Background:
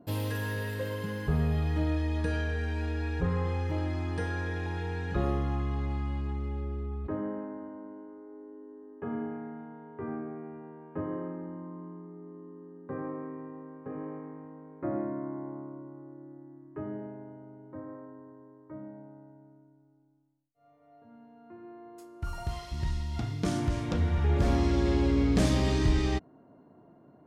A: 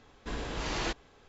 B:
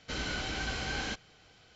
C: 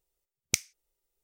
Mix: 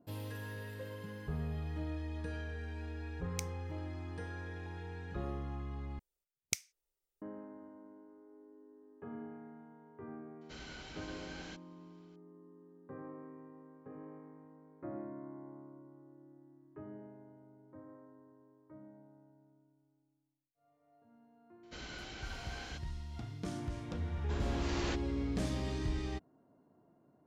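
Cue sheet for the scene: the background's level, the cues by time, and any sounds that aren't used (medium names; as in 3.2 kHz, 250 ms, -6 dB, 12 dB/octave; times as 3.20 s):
background -11 dB
2.85 s: add C -16 dB
5.99 s: replace with C -8.5 dB
10.41 s: add B -14 dB
21.63 s: add B -11.5 dB
24.03 s: add A -6.5 dB + short-mantissa float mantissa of 8-bit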